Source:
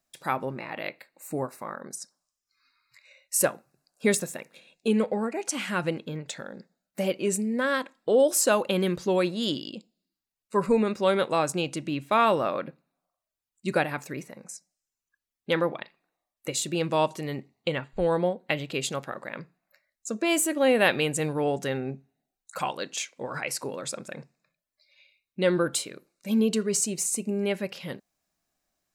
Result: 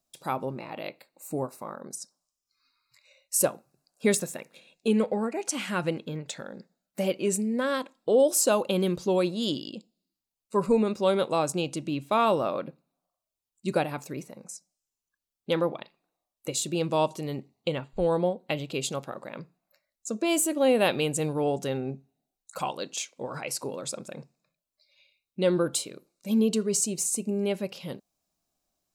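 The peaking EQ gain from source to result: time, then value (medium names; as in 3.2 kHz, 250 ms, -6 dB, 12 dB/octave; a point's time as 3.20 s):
peaking EQ 1.8 kHz
3.45 s -11 dB
4.07 s -3.5 dB
7.41 s -3.5 dB
7.94 s -10 dB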